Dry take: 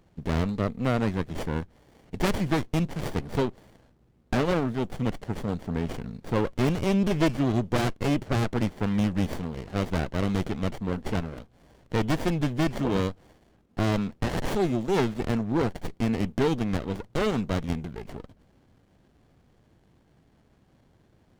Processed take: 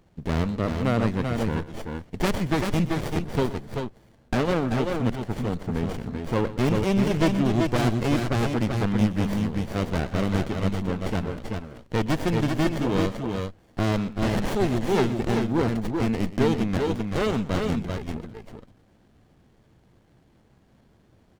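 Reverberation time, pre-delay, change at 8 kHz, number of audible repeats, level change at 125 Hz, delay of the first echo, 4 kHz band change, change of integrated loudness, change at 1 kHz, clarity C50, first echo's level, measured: none, none, +2.5 dB, 2, +2.5 dB, 0.122 s, +2.5 dB, +2.0 dB, +2.5 dB, none, -16.0 dB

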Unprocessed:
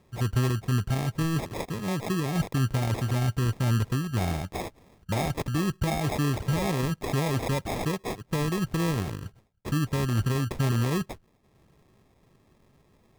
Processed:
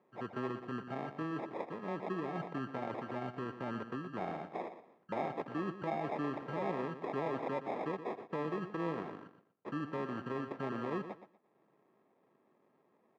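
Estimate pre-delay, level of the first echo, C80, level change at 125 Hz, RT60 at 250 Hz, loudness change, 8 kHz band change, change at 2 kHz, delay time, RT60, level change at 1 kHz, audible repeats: none, -11.0 dB, none, -21.5 dB, none, -11.5 dB, under -30 dB, -9.5 dB, 0.12 s, none, -5.5 dB, 2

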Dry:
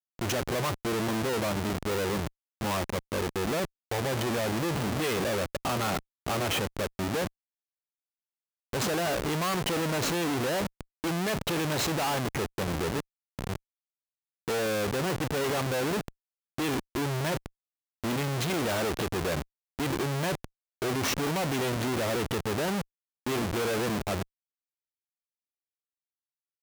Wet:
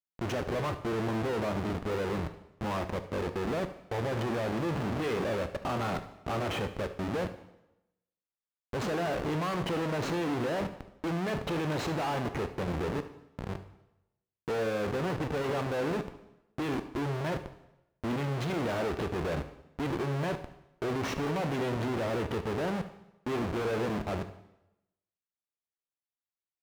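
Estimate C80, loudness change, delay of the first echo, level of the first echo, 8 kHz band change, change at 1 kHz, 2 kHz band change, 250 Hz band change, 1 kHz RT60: 15.0 dB, -3.0 dB, 72 ms, -16.5 dB, -13.5 dB, -2.5 dB, -4.5 dB, -1.5 dB, 0.90 s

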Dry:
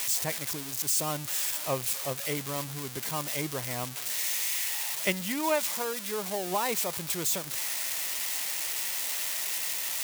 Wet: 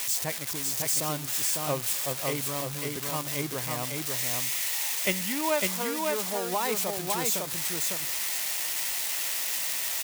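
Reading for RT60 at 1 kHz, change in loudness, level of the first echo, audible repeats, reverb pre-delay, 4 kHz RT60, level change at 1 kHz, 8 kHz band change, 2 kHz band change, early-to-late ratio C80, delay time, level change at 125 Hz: none, +1.5 dB, -3.0 dB, 1, none, none, +1.5 dB, +1.5 dB, +1.5 dB, none, 0.553 s, +2.0 dB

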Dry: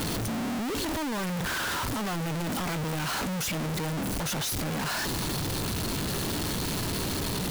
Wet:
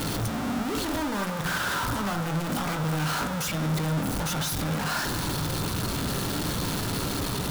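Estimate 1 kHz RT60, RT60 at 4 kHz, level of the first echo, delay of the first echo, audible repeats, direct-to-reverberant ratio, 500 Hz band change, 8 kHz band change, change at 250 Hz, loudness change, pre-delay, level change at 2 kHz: 1.1 s, 1.2 s, none, none, none, 2.5 dB, +1.5 dB, 0.0 dB, +2.0 dB, +1.5 dB, 3 ms, +2.0 dB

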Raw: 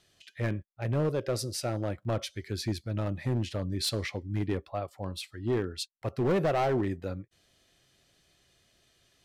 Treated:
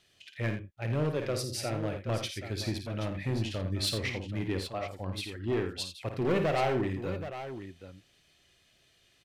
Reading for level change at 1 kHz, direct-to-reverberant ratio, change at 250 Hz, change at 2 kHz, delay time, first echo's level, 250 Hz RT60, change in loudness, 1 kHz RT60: -0.5 dB, none, -1.0 dB, +2.5 dB, 53 ms, -8.0 dB, none, -1.0 dB, none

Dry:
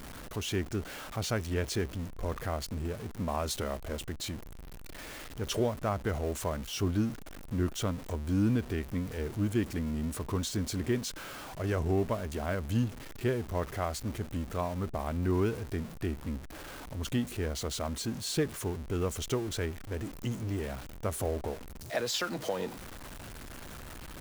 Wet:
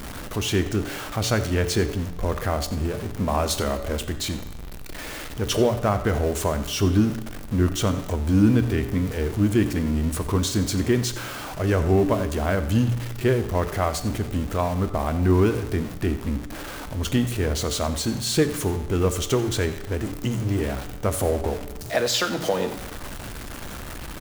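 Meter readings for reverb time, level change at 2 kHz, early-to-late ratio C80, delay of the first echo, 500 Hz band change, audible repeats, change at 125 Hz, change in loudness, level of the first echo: 1.1 s, +9.5 dB, 12.0 dB, 90 ms, +9.5 dB, 1, +10.0 dB, +9.5 dB, -15.5 dB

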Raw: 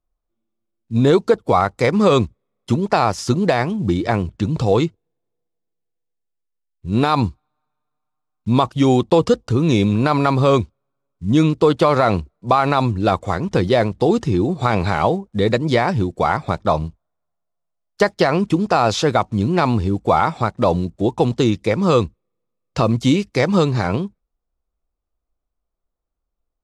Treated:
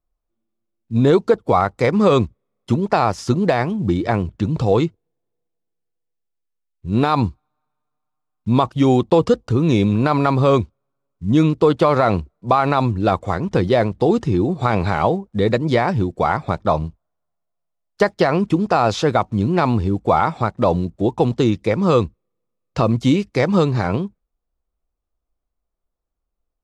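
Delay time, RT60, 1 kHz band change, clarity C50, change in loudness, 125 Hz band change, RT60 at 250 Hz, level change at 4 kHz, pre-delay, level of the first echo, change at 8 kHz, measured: none, none, -0.5 dB, none, 0.0 dB, 0.0 dB, none, -3.5 dB, none, none, n/a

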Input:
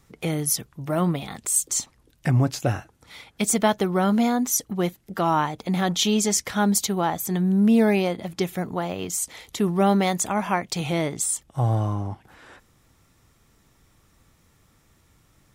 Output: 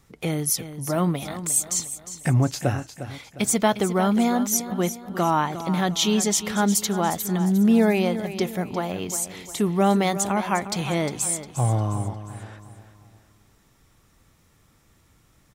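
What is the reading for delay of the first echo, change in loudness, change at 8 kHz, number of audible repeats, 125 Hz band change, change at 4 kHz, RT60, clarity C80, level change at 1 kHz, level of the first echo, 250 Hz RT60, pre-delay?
0.355 s, 0.0 dB, +0.5 dB, 3, 0.0 dB, +0.5 dB, none, none, +0.5 dB, -12.0 dB, none, none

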